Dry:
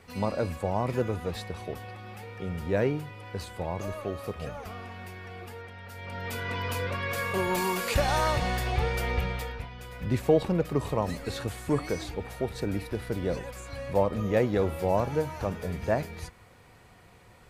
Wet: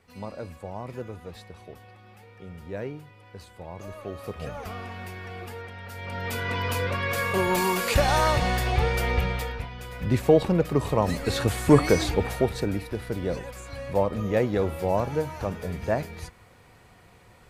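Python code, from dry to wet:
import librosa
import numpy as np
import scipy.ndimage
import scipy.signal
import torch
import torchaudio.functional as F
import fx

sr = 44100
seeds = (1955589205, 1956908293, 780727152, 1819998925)

y = fx.gain(x, sr, db=fx.line((3.6, -8.0), (4.68, 4.0), (10.87, 4.0), (11.67, 10.5), (12.25, 10.5), (12.81, 1.0)))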